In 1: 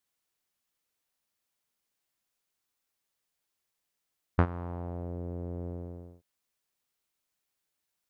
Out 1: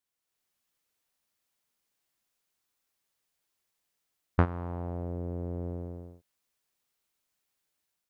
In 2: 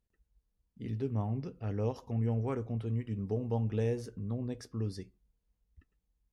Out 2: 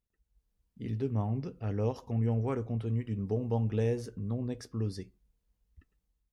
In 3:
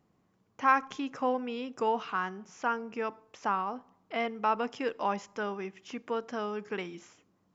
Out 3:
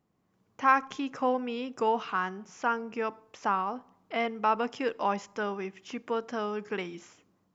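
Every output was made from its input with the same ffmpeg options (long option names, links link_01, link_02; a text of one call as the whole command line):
ffmpeg -i in.wav -af "dynaudnorm=framelen=130:gausssize=5:maxgain=7dB,volume=-5dB" out.wav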